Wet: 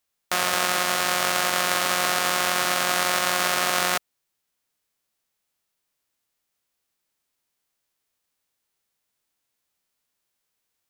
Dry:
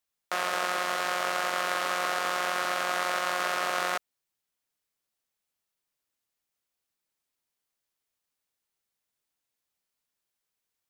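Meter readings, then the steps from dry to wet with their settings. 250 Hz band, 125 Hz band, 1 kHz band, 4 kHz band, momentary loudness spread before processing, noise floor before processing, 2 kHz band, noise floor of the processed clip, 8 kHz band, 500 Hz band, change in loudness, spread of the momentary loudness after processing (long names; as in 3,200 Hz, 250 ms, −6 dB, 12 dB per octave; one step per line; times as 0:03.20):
+8.5 dB, can't be measured, +4.0 dB, +9.5 dB, 2 LU, −85 dBFS, +5.5 dB, −79 dBFS, +12.5 dB, +4.5 dB, +6.5 dB, 2 LU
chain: spectral envelope flattened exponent 0.6
level +6 dB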